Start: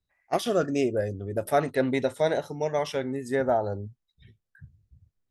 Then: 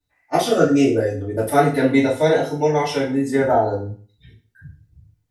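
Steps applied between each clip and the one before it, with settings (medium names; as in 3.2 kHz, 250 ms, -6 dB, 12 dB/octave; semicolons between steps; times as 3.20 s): FDN reverb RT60 0.42 s, low-frequency decay 1×, high-frequency decay 0.95×, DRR -10 dB; trim -2 dB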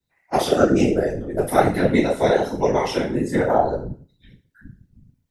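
whisper effect; trim -1.5 dB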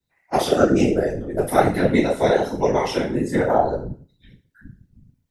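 no audible change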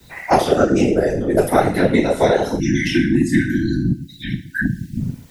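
spectral selection erased 2.59–5.00 s, 360–1500 Hz; three bands compressed up and down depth 100%; trim +3 dB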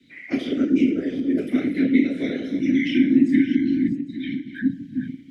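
backward echo that repeats 401 ms, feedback 40%, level -11 dB; vowel filter i; trim +5 dB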